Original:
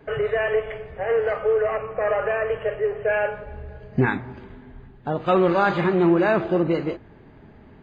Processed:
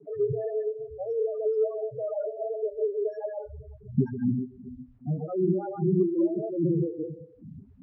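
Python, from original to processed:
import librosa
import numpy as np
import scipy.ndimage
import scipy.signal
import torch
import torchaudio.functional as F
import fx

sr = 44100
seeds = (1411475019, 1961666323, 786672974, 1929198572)

p1 = np.r_[np.sort(x[:len(x) // 8 * 8].reshape(-1, 8), axis=1).ravel(), x[len(x) // 8 * 8:]]
p2 = fx.echo_feedback(p1, sr, ms=128, feedback_pct=17, wet_db=-3)
p3 = fx.rider(p2, sr, range_db=5, speed_s=2.0)
p4 = p2 + (p3 * librosa.db_to_amplitude(0.0))
p5 = fx.rev_spring(p4, sr, rt60_s=1.3, pass_ms=(34, 48), chirp_ms=75, drr_db=12.0)
p6 = fx.tube_stage(p5, sr, drive_db=13.0, bias=0.2)
p7 = fx.spec_topn(p6, sr, count=4)
p8 = fx.hum_notches(p7, sr, base_hz=60, count=3)
p9 = fx.quant_dither(p8, sr, seeds[0], bits=10, dither='none')
p10 = fx.bandpass_q(p9, sr, hz=160.0, q=1.2)
p11 = fx.stagger_phaser(p10, sr, hz=2.5)
y = p11 * librosa.db_to_amplitude(3.5)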